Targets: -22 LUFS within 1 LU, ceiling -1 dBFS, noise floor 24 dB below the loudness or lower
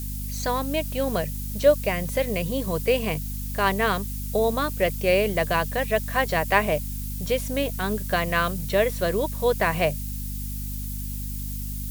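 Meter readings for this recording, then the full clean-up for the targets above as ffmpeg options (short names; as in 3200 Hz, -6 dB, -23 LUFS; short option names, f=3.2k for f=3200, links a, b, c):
hum 50 Hz; harmonics up to 250 Hz; hum level -29 dBFS; noise floor -31 dBFS; noise floor target -49 dBFS; loudness -25.0 LUFS; peak -4.5 dBFS; loudness target -22.0 LUFS
-> -af "bandreject=f=50:t=h:w=4,bandreject=f=100:t=h:w=4,bandreject=f=150:t=h:w=4,bandreject=f=200:t=h:w=4,bandreject=f=250:t=h:w=4"
-af "afftdn=nr=18:nf=-31"
-af "volume=3dB"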